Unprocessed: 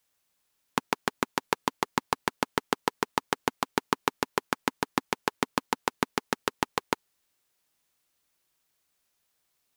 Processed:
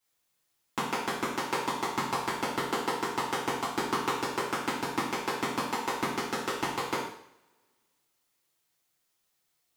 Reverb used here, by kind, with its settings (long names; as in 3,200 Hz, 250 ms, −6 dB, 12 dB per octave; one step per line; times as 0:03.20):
coupled-rooms reverb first 0.63 s, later 1.9 s, from −26 dB, DRR −10 dB
level −11 dB